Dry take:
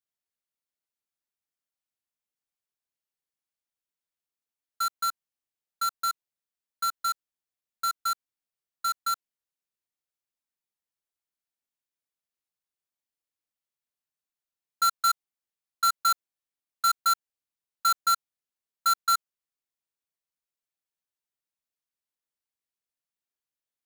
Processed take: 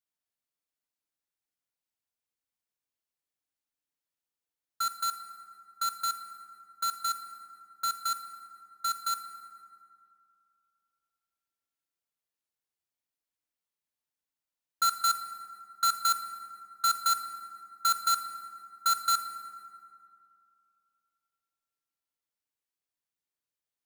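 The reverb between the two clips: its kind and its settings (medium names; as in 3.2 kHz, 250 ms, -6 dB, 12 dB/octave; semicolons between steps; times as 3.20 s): FDN reverb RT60 2.5 s, low-frequency decay 1.1×, high-frequency decay 0.5×, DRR 7 dB; trim -1.5 dB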